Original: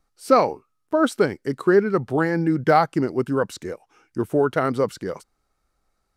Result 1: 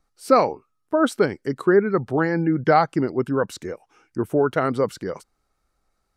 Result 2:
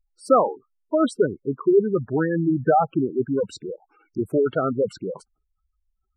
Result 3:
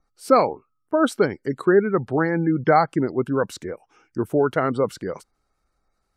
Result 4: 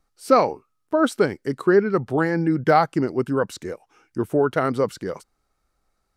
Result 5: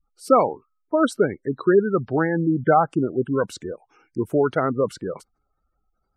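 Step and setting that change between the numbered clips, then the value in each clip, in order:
spectral gate, under each frame's peak: -45, -10, -35, -60, -20 dB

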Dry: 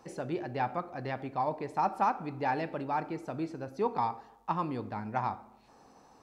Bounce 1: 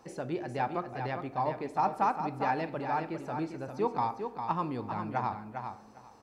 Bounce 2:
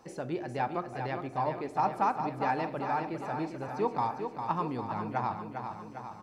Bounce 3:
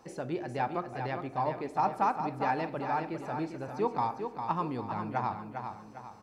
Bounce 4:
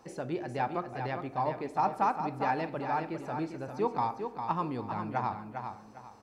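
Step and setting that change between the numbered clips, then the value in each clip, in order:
feedback echo, feedback: 16, 61, 41, 28%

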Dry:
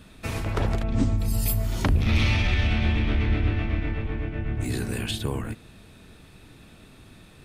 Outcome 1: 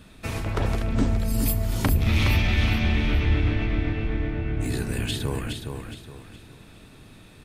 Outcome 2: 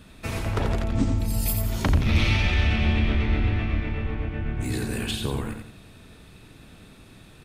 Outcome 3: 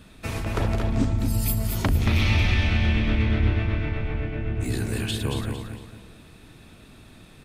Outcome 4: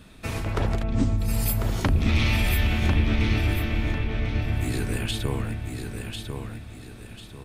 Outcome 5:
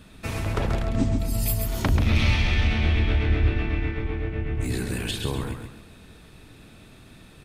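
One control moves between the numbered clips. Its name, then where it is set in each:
feedback echo, time: 416, 87, 227, 1046, 134 ms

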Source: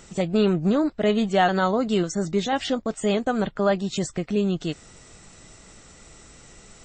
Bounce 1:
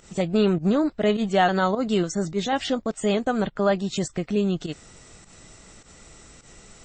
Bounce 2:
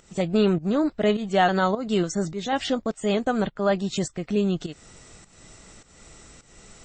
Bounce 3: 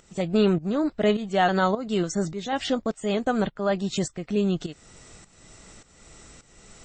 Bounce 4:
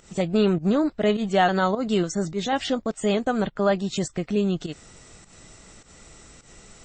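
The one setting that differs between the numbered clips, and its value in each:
pump, release: 97, 313, 509, 144 ms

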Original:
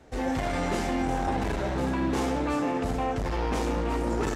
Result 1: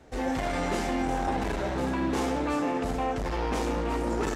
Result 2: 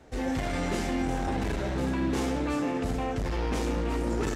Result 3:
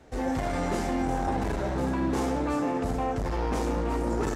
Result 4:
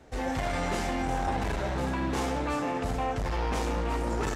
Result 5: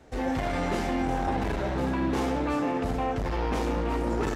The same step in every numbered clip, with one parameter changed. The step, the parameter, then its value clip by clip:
dynamic EQ, frequency: 100, 870, 2900, 300, 7900 Hz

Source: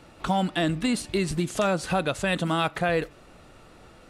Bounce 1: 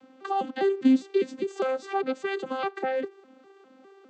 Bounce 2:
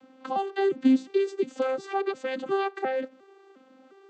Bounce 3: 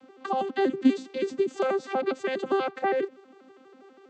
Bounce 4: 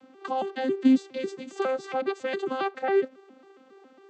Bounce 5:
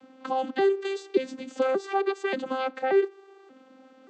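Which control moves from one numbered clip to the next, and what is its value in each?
arpeggiated vocoder, a note every: 202, 355, 81, 137, 581 ms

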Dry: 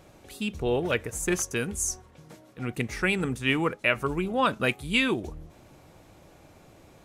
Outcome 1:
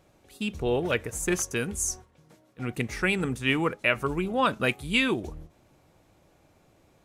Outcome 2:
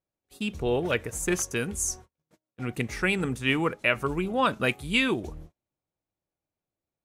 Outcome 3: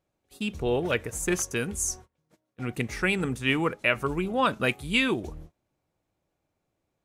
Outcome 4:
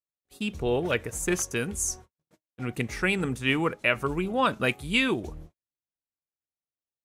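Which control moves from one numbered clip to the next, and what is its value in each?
gate, range: -8, -38, -26, -55 dB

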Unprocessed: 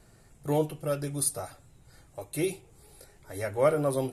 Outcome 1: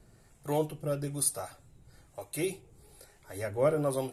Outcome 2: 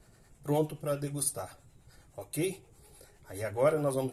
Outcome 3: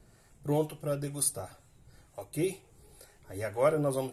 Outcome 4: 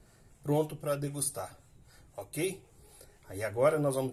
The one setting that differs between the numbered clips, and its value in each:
harmonic tremolo, rate: 1.1, 9.6, 2.1, 3.9 Hz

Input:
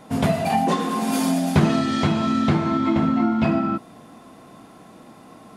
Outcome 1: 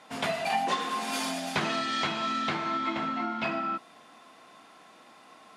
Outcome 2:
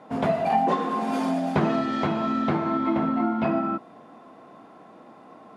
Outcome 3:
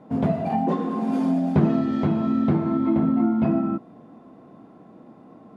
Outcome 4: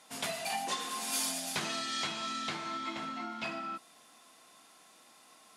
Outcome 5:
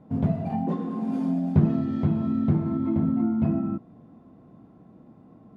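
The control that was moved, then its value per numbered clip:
band-pass, frequency: 2800, 730, 280, 7300, 100 Hz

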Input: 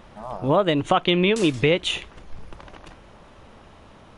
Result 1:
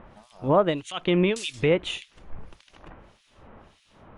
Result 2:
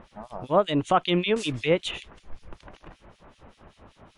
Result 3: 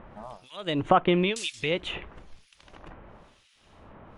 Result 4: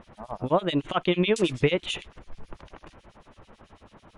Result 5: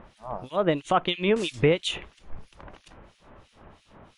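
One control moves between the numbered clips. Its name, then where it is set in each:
harmonic tremolo, rate: 1.7, 5.2, 1, 9.1, 3 Hz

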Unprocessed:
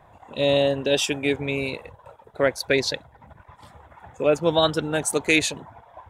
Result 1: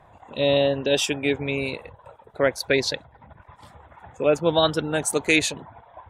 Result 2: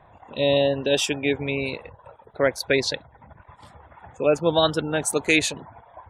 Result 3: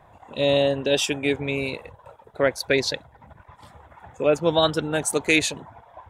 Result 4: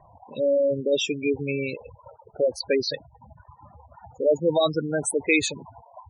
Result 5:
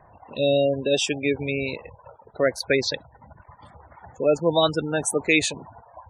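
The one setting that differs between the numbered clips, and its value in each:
spectral gate, under each frame's peak: -45, -35, -60, -10, -20 dB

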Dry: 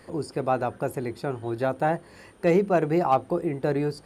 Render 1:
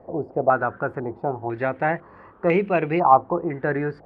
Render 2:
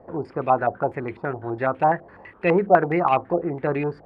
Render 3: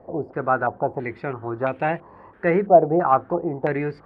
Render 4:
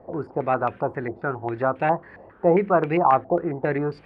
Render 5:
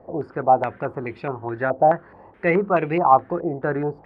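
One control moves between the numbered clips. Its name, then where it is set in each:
stepped low-pass, rate: 2, 12, 3, 7.4, 4.7 Hz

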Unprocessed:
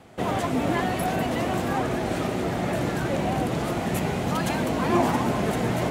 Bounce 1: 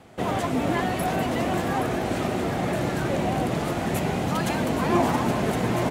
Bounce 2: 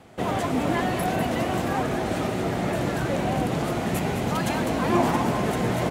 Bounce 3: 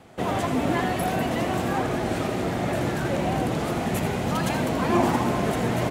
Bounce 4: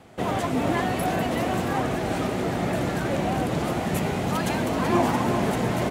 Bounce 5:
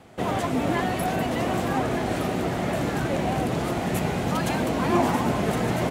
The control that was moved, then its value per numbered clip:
feedback echo, time: 822, 210, 82, 381, 1215 ms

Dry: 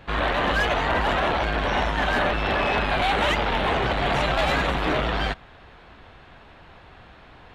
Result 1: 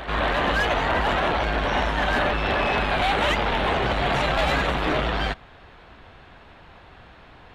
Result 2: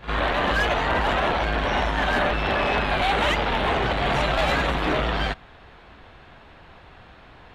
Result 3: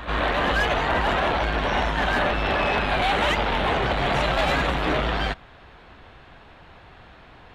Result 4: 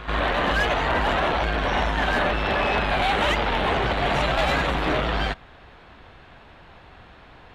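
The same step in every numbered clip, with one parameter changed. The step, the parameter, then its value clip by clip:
pre-echo, time: 243, 53, 147, 94 ms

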